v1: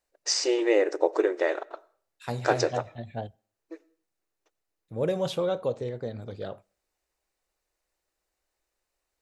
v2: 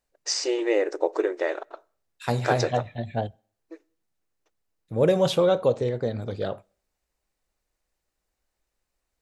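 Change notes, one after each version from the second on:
first voice: send −8.5 dB
second voice +7.0 dB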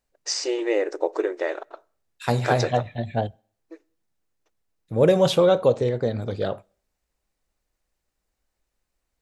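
second voice +3.0 dB

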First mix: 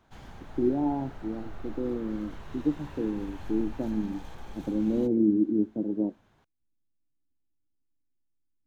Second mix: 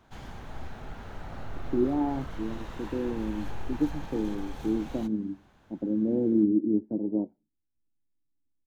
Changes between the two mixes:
speech: entry +1.15 s
background +4.0 dB

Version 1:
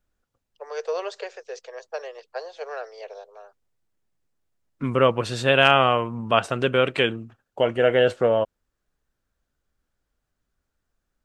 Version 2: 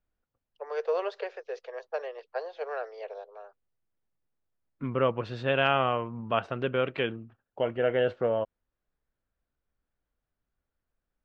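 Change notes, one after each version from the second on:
second voice −6.5 dB
master: add high-frequency loss of the air 260 metres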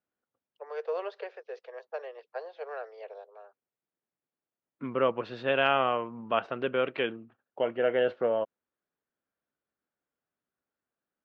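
first voice −4.0 dB
master: add band-pass filter 220–4,600 Hz

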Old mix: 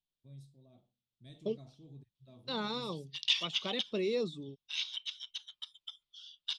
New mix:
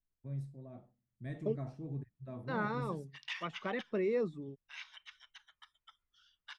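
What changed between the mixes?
first voice +11.5 dB
master: add high shelf with overshoot 2,500 Hz −12 dB, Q 3

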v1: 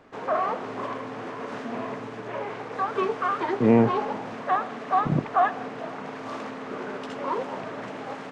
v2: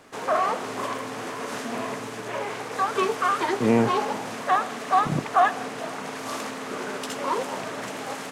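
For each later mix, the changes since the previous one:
speech −3.0 dB
master: remove head-to-tape spacing loss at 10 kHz 25 dB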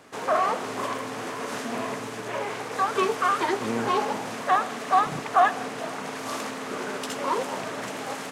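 speech −10.0 dB

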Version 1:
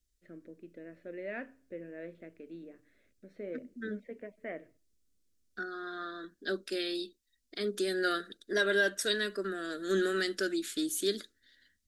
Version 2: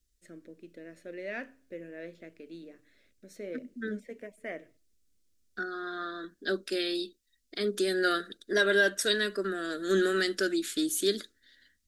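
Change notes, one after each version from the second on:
first voice: remove high-frequency loss of the air 400 metres
second voice +3.5 dB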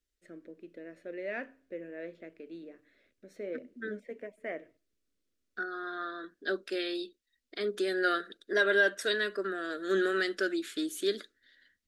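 first voice: add low-shelf EQ 400 Hz +6.5 dB
master: add bass and treble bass −12 dB, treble −11 dB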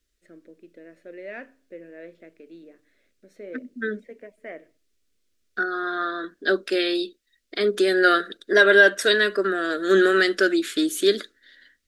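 second voice +11.0 dB

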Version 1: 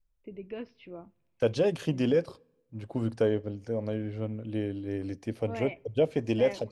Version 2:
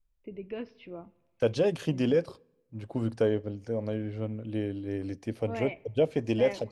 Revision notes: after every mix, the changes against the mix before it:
first voice: send +11.5 dB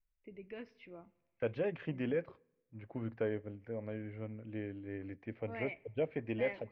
first voice: remove low-pass filter 2,700 Hz 24 dB per octave
master: add transistor ladder low-pass 2,400 Hz, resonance 55%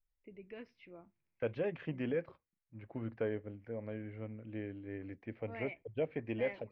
reverb: off

